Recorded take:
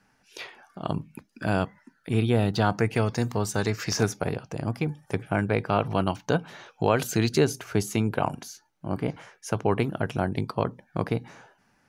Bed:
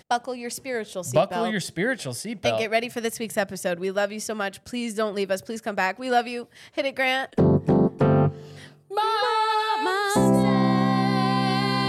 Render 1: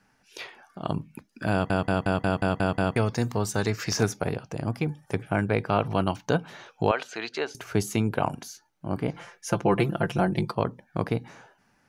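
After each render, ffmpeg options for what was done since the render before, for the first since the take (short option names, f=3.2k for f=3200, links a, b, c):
-filter_complex "[0:a]asettb=1/sr,asplit=3[a][b][c];[a]atrim=end=6.914[d];[b]atrim=start=6.91:end=7.55,asetpts=PTS-STARTPTS,afade=t=in:d=0.004:c=qsin,afade=t=out:st=0.636:d=0.004:c=qsin,highpass=660,lowpass=3.4k[e];[c]atrim=start=7.546[f];[d][e]acrossfade=d=0.004:c1=hsin:c2=qsin[g];[g][f]acrossfade=d=0.004:c1=qsin:c2=hsin,asettb=1/sr,asplit=3[h][i][j];[h]atrim=end=9.144[k];[i]atrim=start=9.14:end=10.55,asetpts=PTS-STARTPTS,afade=t=in:d=0.004:c=qsin,afade=t=out:st=1.406:d=0.004:c=qsin,aecho=1:1:5.8:0.91,atrim=end_sample=62181[l];[j]atrim=start=10.546[m];[k][l]acrossfade=d=0.004:c1=hsin:c2=qsin[n];[n][m]acrossfade=d=0.004:c1=qsin:c2=hsin,asplit=9[o][p][q][r][s][t][u][v][w];[o]atrim=end=1.702[x];[p]atrim=start=1.518:end=1.702[y];[q]atrim=start=1.518:end=1.702[z];[r]atrim=start=1.518:end=1.702[aa];[s]atrim=start=1.518:end=1.702[ab];[t]atrim=start=1.518:end=1.702[ac];[u]atrim=start=1.518:end=1.702[ad];[v]atrim=start=1.518:end=1.702[ae];[w]atrim=start=2.958[af];[x][y]acrossfade=d=0.004:c1=hsin:c2=hsin[ag];[ag][z]acrossfade=d=0.004:c1=hsin:c2=hsin[ah];[ah][aa]acrossfade=d=0.004:c1=hsin:c2=hsin[ai];[ai][ab]acrossfade=d=0.004:c1=hsin:c2=hsin[aj];[aj][ac]acrossfade=d=0.004:c1=hsin:c2=hsin[ak];[ak][ad]acrossfade=d=0.004:c1=hsin:c2=hsin[al];[al][ae]acrossfade=d=0.004:c1=hsin:c2=hsin[am];[am][af]acrossfade=d=0.004:c1=hsin:c2=hsin"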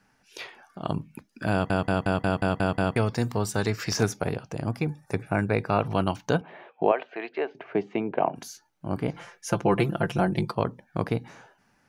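-filter_complex "[0:a]asettb=1/sr,asplit=3[a][b][c];[a]atrim=end=2.084[d];[b]atrim=start=2.08:end=3.95,asetpts=PTS-STARTPTS,afade=t=in:d=0.004:c=qsin,afade=t=out:st=1.866:d=0.004:c=qsin,bandreject=f=6.4k:w=11[e];[c]atrim=start=3.946[f];[d][e]acrossfade=d=0.004:c1=hsin:c2=qsin[g];[g][f]acrossfade=d=0.004:c1=qsin:c2=hsin,asettb=1/sr,asplit=3[h][i][j];[h]atrim=end=4.794[k];[i]atrim=start=4.79:end=5.81,asetpts=PTS-STARTPTS,afade=t=in:d=0.004:c=qsin,afade=t=out:st=1.016:d=0.004:c=qsin,asuperstop=centerf=3100:order=8:qfactor=5.9[l];[j]atrim=start=5.806[m];[k][l]acrossfade=d=0.004:c1=hsin:c2=qsin[n];[n][m]acrossfade=d=0.004:c1=qsin:c2=hsin,asettb=1/sr,asplit=3[o][p][q];[o]atrim=end=6.414[r];[p]atrim=start=6.41:end=8.36,asetpts=PTS-STARTPTS,afade=t=in:d=0.004:c=qsin,afade=t=out:st=1.946:d=0.004:c=qsin,highpass=f=180:w=0.5412,highpass=f=180:w=1.3066,equalizer=f=220:t=q:w=4:g=-5,equalizer=f=370:t=q:w=4:g=3,equalizer=f=670:t=q:w=4:g=6,equalizer=f=1.4k:t=q:w=4:g=-8,lowpass=f=2.5k:w=0.5412,lowpass=f=2.5k:w=1.3066[s];[q]atrim=start=8.356[t];[r][s]acrossfade=d=0.004:c1=hsin:c2=qsin[u];[u][t]acrossfade=d=0.004:c1=qsin:c2=hsin"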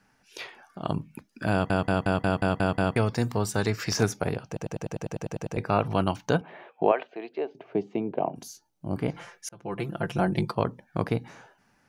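-filter_complex "[0:a]asettb=1/sr,asplit=3[a][b][c];[a]atrim=end=7.074[d];[b]atrim=start=7.07:end=8.96,asetpts=PTS-STARTPTS,afade=t=in:d=0.004:c=qsin,afade=t=out:st=1.886:d=0.004:c=qsin,equalizer=f=1.7k:t=o:w=1.6:g=-12.5[e];[c]atrim=start=8.956[f];[d][e]acrossfade=d=0.004:c1=hsin:c2=qsin[g];[g][f]acrossfade=d=0.004:c1=qsin:c2=hsin,asplit=13[h][i][j][k][l][m][n][o][p][q][r][s][t];[h]atrim=end=4.572[u];[i]atrim=start=4.468:end=4.572[v];[j]atrim=start=4.468:end=4.572[w];[k]atrim=start=4.468:end=4.572[x];[l]atrim=start=4.468:end=4.572[y];[m]atrim=start=4.468:end=4.572[z];[n]atrim=start=4.468:end=4.572[aa];[o]atrim=start=4.468:end=4.572[ab];[p]atrim=start=4.468:end=4.572[ac];[q]atrim=start=4.468:end=4.572[ad];[r]atrim=start=4.468:end=4.572[ae];[s]atrim=start=5.568:end=9.49,asetpts=PTS-STARTPTS,afade=t=out:st=3.918:d=0.004:c=hsin[af];[t]atrim=start=9.49,asetpts=PTS-STARTPTS,afade=t=in:d=0.83[ag];[u][v]acrossfade=d=0.004:c1=hsin:c2=hsin[ah];[ah][w]acrossfade=d=0.004:c1=hsin:c2=hsin[ai];[ai][x]acrossfade=d=0.004:c1=hsin:c2=hsin[aj];[aj][y]acrossfade=d=0.004:c1=hsin:c2=hsin[ak];[ak][z]acrossfade=d=0.004:c1=hsin:c2=hsin[al];[al][aa]acrossfade=d=0.004:c1=hsin:c2=hsin[am];[am][ab]acrossfade=d=0.004:c1=hsin:c2=hsin[an];[an][ac]acrossfade=d=0.004:c1=hsin:c2=hsin[ao];[ao][ad]acrossfade=d=0.004:c1=hsin:c2=hsin[ap];[ap][ae]acrossfade=d=0.004:c1=hsin:c2=hsin[aq];[af][ag]concat=n=2:v=0:a=1[ar];[aq][ar]acrossfade=d=0.004:c1=hsin:c2=hsin"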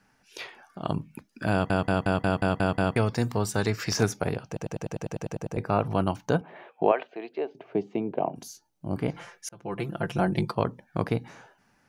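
-filter_complex "[0:a]asettb=1/sr,asplit=3[a][b][c];[a]atrim=end=5.354[d];[b]atrim=start=5.35:end=6.56,asetpts=PTS-STARTPTS,afade=t=in:d=0.004:c=qsin,afade=t=out:st=1.206:d=0.004:c=qsin,equalizer=f=3.3k:w=0.58:g=-5[e];[c]atrim=start=6.556[f];[d][e]acrossfade=d=0.004:c1=hsin:c2=qsin[g];[g][f]acrossfade=d=0.004:c1=qsin:c2=hsin"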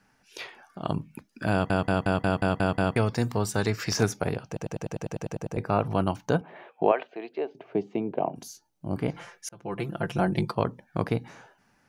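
-af anull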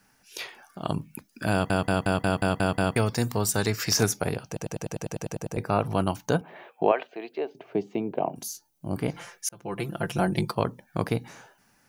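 -af "aemphasis=mode=production:type=50kf"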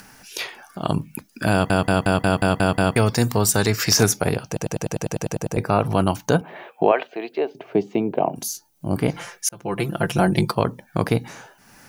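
-filter_complex "[0:a]asplit=2[a][b];[b]alimiter=limit=-13.5dB:level=0:latency=1:release=48,volume=2.5dB[c];[a][c]amix=inputs=2:normalize=0,acompressor=mode=upward:threshold=-38dB:ratio=2.5"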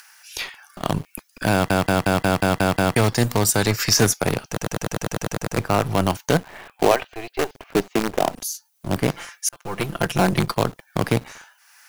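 -filter_complex "[0:a]acrossover=split=190|950[a][b][c];[a]aeval=exprs='sgn(val(0))*max(abs(val(0))-0.00841,0)':c=same[d];[b]acrusher=bits=4:dc=4:mix=0:aa=0.000001[e];[d][e][c]amix=inputs=3:normalize=0"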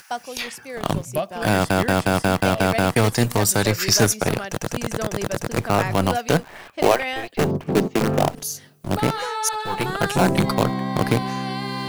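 -filter_complex "[1:a]volume=-4.5dB[a];[0:a][a]amix=inputs=2:normalize=0"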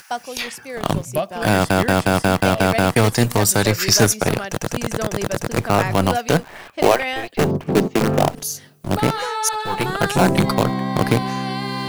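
-af "volume=2.5dB,alimiter=limit=-1dB:level=0:latency=1"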